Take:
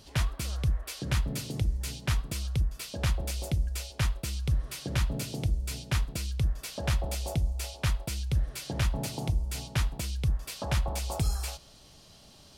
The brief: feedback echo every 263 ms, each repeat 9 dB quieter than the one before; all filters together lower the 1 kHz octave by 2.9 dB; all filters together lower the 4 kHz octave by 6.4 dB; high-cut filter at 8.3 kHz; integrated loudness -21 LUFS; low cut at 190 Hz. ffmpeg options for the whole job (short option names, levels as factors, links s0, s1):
-af "highpass=190,lowpass=8300,equalizer=f=1000:t=o:g=-3.5,equalizer=f=4000:t=o:g=-8,aecho=1:1:263|526|789|1052:0.355|0.124|0.0435|0.0152,volume=8.41"